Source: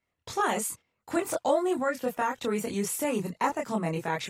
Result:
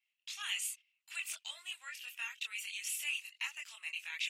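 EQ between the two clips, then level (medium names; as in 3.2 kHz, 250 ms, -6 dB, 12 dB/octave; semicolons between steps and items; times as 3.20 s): ladder high-pass 2.5 kHz, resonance 70%; peaking EQ 3.9 kHz -2 dB; treble shelf 10 kHz -4 dB; +7.0 dB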